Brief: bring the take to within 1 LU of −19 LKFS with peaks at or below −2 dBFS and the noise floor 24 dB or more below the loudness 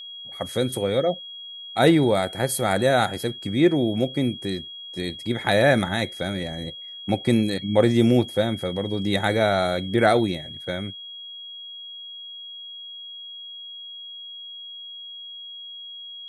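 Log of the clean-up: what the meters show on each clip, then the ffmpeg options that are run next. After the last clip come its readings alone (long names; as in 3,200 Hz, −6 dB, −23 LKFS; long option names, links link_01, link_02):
interfering tone 3,300 Hz; level of the tone −36 dBFS; integrated loudness −23.0 LKFS; sample peak −4.5 dBFS; target loudness −19.0 LKFS
→ -af "bandreject=frequency=3300:width=30"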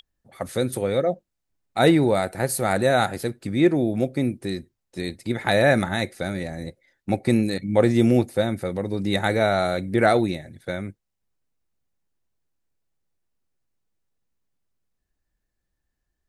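interfering tone none found; integrated loudness −22.5 LKFS; sample peak −4.5 dBFS; target loudness −19.0 LKFS
→ -af "volume=3.5dB,alimiter=limit=-2dB:level=0:latency=1"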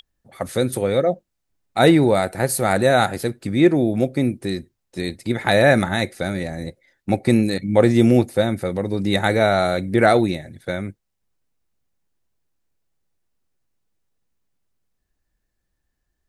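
integrated loudness −19.5 LKFS; sample peak −2.0 dBFS; background noise floor −76 dBFS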